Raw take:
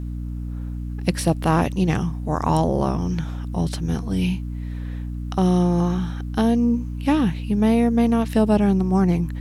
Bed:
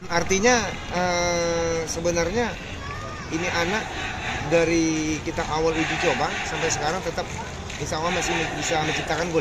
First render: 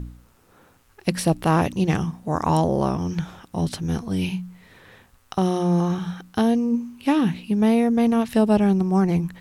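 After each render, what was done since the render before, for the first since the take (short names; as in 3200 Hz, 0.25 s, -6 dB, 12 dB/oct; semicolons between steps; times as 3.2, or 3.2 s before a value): de-hum 60 Hz, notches 5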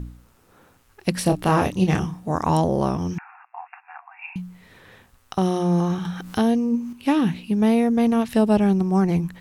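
1.23–2.31 doubler 27 ms -5.5 dB; 3.18–4.36 brick-wall FIR band-pass 700–2800 Hz; 6.05–6.93 upward compressor, threshold -24 dBFS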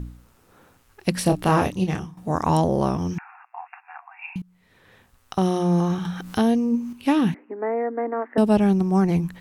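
1.57–2.17 fade out, to -13.5 dB; 4.42–5.39 fade in, from -22 dB; 7.34–8.38 Chebyshev band-pass 270–2000 Hz, order 5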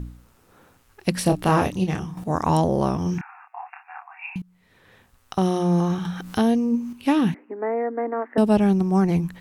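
1.49–2.24 upward compressor, threshold -23 dBFS; 3.03–4.38 doubler 28 ms -4 dB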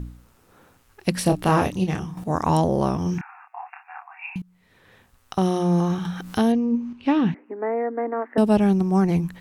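6.52–7.46 air absorption 160 m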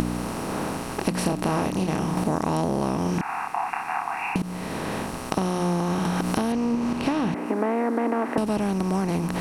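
per-bin compression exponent 0.4; compressor, threshold -21 dBFS, peak gain reduction 11 dB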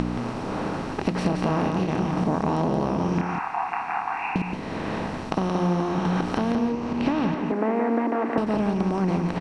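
air absorption 130 m; echo 0.175 s -5.5 dB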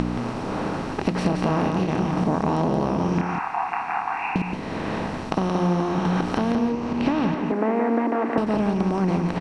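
gain +1.5 dB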